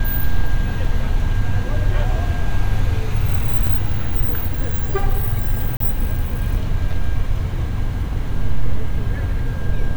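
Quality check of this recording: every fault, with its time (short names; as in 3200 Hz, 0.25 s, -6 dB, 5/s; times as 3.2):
0.85 gap 2.6 ms
3.67 gap 3.8 ms
5.77–5.8 gap 33 ms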